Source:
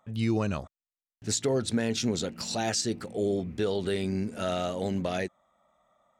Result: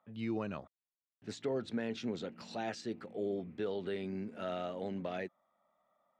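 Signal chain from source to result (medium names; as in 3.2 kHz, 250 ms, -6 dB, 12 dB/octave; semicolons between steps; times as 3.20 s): three-band isolator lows -13 dB, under 150 Hz, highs -20 dB, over 3.6 kHz; trim -8 dB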